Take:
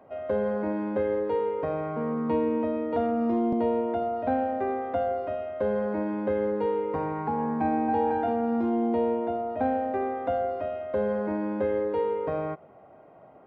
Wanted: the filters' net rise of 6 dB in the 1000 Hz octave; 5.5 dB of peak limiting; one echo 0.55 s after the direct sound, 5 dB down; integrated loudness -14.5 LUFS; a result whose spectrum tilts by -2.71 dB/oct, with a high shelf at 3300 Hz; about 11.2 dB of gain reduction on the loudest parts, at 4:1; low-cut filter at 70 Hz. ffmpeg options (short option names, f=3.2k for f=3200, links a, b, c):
-af "highpass=70,equalizer=f=1k:t=o:g=8,highshelf=f=3.3k:g=4.5,acompressor=threshold=-32dB:ratio=4,alimiter=level_in=2.5dB:limit=-24dB:level=0:latency=1,volume=-2.5dB,aecho=1:1:550:0.562,volume=19dB"